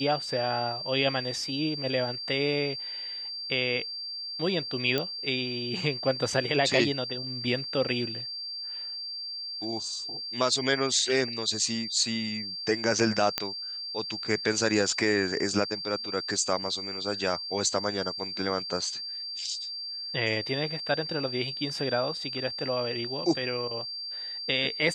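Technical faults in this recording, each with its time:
whistle 4,700 Hz −34 dBFS
0:04.98: click −13 dBFS
0:13.38: click −8 dBFS

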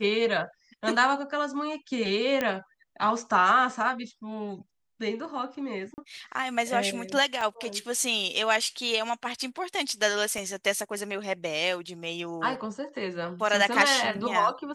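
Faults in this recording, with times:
0:02.41: click −13 dBFS
0:05.94–0:05.98: drop-out 39 ms
0:07.41: drop-out 3.2 ms
0:10.38: drop-out 2 ms

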